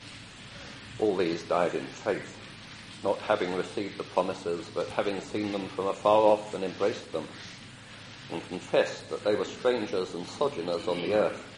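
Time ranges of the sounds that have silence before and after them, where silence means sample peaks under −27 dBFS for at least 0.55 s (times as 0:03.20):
0:01.00–0:02.18
0:03.05–0:07.21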